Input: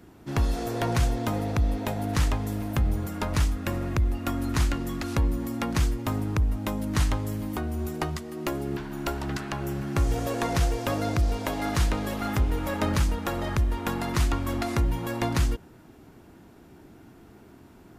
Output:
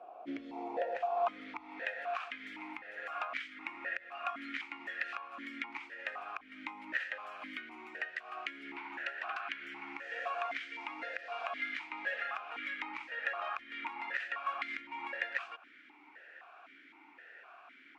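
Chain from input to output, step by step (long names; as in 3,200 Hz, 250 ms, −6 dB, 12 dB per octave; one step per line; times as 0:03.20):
tilt shelving filter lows −9 dB, about 660 Hz
downward compressor 10 to 1, threshold −33 dBFS, peak gain reduction 13.5 dB
band-pass filter sweep 600 Hz → 1,600 Hz, 0:00.58–0:01.87
boost into a limiter +26 dB
formant filter that steps through the vowels 3.9 Hz
level −7 dB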